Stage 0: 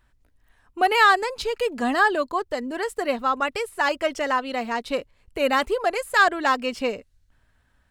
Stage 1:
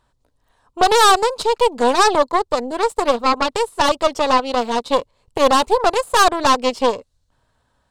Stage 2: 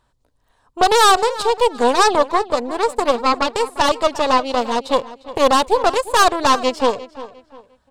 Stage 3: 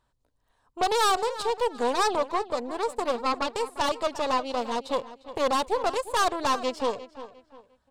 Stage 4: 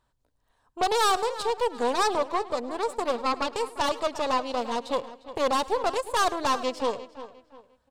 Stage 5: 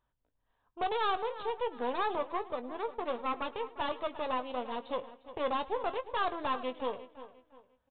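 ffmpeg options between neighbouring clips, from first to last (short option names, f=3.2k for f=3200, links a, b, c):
-af "aeval=exprs='0.501*(cos(1*acos(clip(val(0)/0.501,-1,1)))-cos(1*PI/2))+0.126*(cos(8*acos(clip(val(0)/0.501,-1,1)))-cos(8*PI/2))':c=same,equalizer=f=125:t=o:w=1:g=7,equalizer=f=250:t=o:w=1:g=3,equalizer=f=500:t=o:w=1:g=10,equalizer=f=1k:t=o:w=1:g=11,equalizer=f=2k:t=o:w=1:g=-4,equalizer=f=4k:t=o:w=1:g=9,equalizer=f=8k:t=o:w=1:g=8,volume=-5.5dB"
-filter_complex "[0:a]asplit=2[a][b];[b]adelay=352,lowpass=f=3.8k:p=1,volume=-16dB,asplit=2[c][d];[d]adelay=352,lowpass=f=3.8k:p=1,volume=0.33,asplit=2[e][f];[f]adelay=352,lowpass=f=3.8k:p=1,volume=0.33[g];[a][c][e][g]amix=inputs=4:normalize=0"
-af "asoftclip=type=tanh:threshold=-7dB,volume=-8.5dB"
-af "aecho=1:1:106|212:0.0944|0.0227"
-filter_complex "[0:a]asplit=2[a][b];[b]adelay=20,volume=-11.5dB[c];[a][c]amix=inputs=2:normalize=0,aresample=8000,aresample=44100,volume=-8dB"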